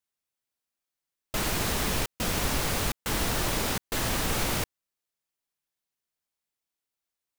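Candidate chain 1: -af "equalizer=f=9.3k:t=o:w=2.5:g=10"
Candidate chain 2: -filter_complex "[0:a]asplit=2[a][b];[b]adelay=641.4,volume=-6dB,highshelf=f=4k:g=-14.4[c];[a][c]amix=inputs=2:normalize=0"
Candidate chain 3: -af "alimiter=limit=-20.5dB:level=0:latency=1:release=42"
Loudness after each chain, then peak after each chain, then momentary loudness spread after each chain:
-22.5, -28.5, -31.0 LUFS; -11.0, -14.0, -20.5 dBFS; 3, 10, 3 LU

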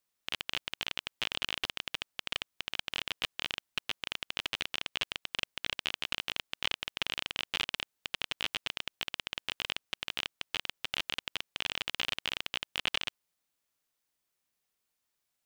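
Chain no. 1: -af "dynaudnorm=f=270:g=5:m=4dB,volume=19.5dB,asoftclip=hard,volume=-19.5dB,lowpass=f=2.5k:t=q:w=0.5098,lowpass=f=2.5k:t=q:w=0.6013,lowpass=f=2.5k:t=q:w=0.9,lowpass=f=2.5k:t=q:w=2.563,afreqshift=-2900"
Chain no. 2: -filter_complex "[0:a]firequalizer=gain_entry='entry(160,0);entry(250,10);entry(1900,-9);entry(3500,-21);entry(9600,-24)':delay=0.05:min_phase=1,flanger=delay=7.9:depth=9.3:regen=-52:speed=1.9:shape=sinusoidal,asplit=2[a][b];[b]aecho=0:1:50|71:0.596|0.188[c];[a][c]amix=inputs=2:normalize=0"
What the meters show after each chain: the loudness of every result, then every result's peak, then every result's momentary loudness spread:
-45.5, -47.0 LUFS; -21.0, -21.0 dBFS; 4, 4 LU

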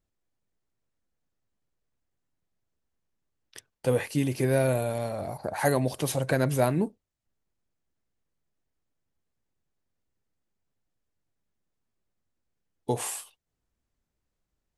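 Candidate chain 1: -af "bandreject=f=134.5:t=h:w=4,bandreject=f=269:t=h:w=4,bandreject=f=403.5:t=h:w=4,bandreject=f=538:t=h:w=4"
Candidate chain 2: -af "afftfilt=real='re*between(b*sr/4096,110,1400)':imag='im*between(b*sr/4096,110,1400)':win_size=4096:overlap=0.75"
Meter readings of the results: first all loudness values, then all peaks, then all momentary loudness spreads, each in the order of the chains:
-28.5, -28.5 LUFS; -10.0, -11.0 dBFS; 9, 9 LU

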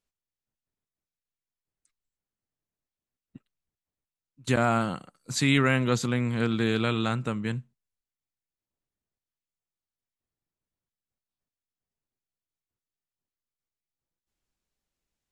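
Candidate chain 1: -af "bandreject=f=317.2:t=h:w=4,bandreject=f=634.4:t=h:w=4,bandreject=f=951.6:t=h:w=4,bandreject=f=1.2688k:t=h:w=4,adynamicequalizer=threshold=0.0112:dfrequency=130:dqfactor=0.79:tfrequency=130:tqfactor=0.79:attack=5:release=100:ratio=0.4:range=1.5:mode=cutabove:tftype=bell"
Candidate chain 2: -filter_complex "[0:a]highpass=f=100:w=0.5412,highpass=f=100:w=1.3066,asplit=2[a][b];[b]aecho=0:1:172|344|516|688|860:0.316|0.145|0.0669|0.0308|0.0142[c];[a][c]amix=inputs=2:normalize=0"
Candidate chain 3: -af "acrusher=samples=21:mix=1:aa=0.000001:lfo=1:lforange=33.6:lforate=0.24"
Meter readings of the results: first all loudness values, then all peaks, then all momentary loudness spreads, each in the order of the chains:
-27.0, -26.0, -26.5 LUFS; -9.5, -9.5, -9.5 dBFS; 12, 12, 13 LU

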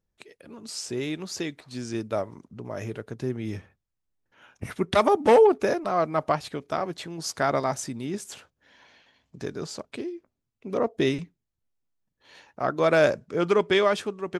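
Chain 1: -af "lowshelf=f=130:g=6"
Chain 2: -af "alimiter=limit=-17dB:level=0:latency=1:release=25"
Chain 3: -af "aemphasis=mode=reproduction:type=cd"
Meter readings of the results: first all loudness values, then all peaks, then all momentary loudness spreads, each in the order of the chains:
-25.5, -30.0, -25.5 LUFS; -8.5, -17.0, -8.5 dBFS; 17, 14, 18 LU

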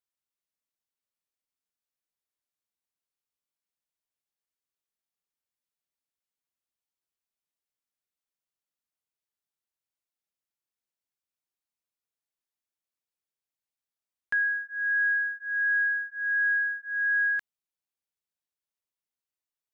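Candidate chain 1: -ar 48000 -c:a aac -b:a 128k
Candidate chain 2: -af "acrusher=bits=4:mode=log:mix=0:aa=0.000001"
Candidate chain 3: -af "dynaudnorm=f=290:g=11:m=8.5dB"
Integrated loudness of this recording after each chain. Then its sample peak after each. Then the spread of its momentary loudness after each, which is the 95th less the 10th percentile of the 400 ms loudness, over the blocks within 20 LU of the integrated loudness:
-26.0, -25.5, -17.5 LUFS; -21.0, -20.5, -12.5 dBFS; 5, 5, 5 LU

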